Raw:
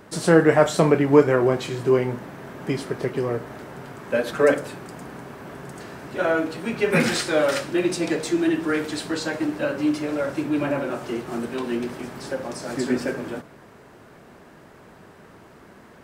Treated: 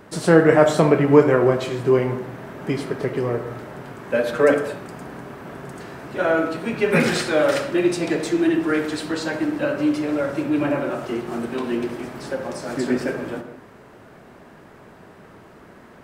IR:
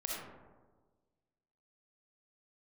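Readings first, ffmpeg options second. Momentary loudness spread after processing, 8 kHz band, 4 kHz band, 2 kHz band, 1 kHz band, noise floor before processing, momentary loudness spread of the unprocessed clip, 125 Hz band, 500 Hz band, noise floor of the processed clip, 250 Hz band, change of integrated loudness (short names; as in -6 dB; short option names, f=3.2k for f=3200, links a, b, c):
20 LU, -1.5 dB, 0.0 dB, +1.5 dB, +2.0 dB, -48 dBFS, 20 LU, +2.0 dB, +2.0 dB, -46 dBFS, +2.0 dB, +2.0 dB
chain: -filter_complex "[0:a]asplit=2[a][b];[1:a]atrim=start_sample=2205,afade=t=out:st=0.29:d=0.01,atrim=end_sample=13230,lowpass=4.3k[c];[b][c]afir=irnorm=-1:irlink=0,volume=-6.5dB[d];[a][d]amix=inputs=2:normalize=0,volume=-1dB"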